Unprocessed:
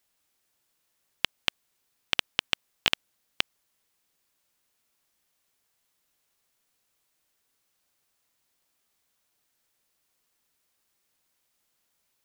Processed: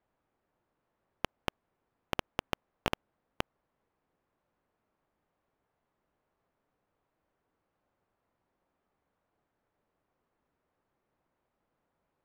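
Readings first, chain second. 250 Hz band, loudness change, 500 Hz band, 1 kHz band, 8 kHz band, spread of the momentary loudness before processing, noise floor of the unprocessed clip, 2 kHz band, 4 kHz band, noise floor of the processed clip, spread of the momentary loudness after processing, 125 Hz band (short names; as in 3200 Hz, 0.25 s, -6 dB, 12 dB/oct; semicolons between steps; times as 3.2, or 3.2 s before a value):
+4.0 dB, -9.5 dB, +4.0 dB, +0.5 dB, -10.5 dB, 5 LU, -76 dBFS, -10.5 dB, -15.0 dB, -83 dBFS, 5 LU, +4.0 dB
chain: LPF 1000 Hz 12 dB/oct; in parallel at -7.5 dB: wrapped overs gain 21 dB; on the sum: gain +3.5 dB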